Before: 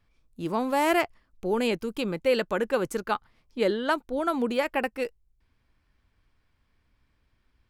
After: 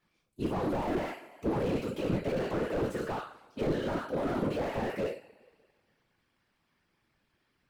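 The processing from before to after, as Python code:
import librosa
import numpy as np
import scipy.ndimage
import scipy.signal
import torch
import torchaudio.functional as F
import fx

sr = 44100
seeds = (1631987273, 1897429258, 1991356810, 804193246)

y = scipy.signal.sosfilt(scipy.signal.butter(2, 140.0, 'highpass', fs=sr, output='sos'), x)
y = fx.rev_double_slope(y, sr, seeds[0], early_s=0.36, late_s=1.8, knee_db=-27, drr_db=-1.0)
y = fx.whisperise(y, sr, seeds[1])
y = fx.slew_limit(y, sr, full_power_hz=26.0)
y = y * 10.0 ** (-3.0 / 20.0)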